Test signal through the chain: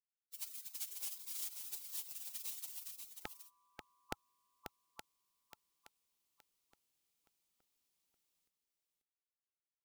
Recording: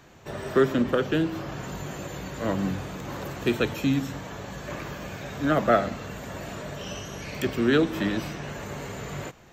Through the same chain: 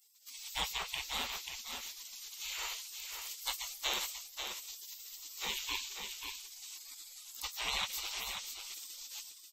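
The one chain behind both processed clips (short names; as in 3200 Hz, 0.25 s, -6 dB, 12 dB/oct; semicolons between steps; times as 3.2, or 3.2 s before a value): spectral gate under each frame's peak -30 dB weak; fifteen-band EQ 100 Hz -7 dB, 630 Hz -6 dB, 1600 Hz -9 dB; on a send: echo 0.538 s -6.5 dB; on the sum: gain +8.5 dB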